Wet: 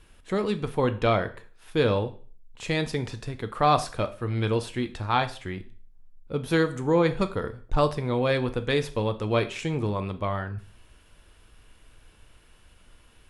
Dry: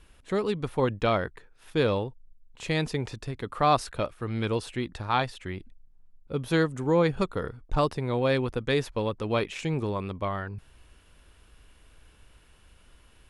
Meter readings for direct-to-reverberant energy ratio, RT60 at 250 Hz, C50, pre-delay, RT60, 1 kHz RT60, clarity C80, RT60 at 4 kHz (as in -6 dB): 9.0 dB, 0.45 s, 16.0 dB, 5 ms, 0.40 s, 0.40 s, 20.0 dB, 0.40 s